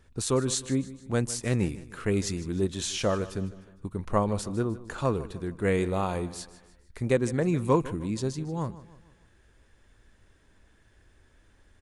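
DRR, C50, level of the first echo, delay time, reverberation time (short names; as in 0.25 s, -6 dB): none, none, -17.0 dB, 0.153 s, none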